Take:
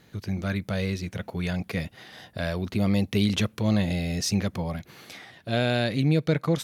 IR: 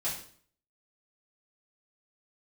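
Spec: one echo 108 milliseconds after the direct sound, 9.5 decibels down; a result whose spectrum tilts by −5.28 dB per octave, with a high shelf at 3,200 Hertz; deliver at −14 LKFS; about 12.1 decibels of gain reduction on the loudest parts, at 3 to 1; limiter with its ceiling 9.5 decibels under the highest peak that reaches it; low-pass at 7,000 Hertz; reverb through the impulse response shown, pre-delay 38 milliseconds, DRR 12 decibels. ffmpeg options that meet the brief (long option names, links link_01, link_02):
-filter_complex "[0:a]lowpass=7000,highshelf=frequency=3200:gain=4.5,acompressor=threshold=-35dB:ratio=3,alimiter=level_in=5.5dB:limit=-24dB:level=0:latency=1,volume=-5.5dB,aecho=1:1:108:0.335,asplit=2[link_01][link_02];[1:a]atrim=start_sample=2205,adelay=38[link_03];[link_02][link_03]afir=irnorm=-1:irlink=0,volume=-16.5dB[link_04];[link_01][link_04]amix=inputs=2:normalize=0,volume=25.5dB"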